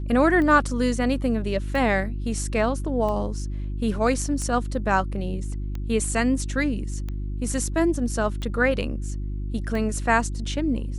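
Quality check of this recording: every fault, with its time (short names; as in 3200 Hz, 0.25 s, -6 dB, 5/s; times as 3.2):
hum 50 Hz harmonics 7 -29 dBFS
tick 45 rpm -20 dBFS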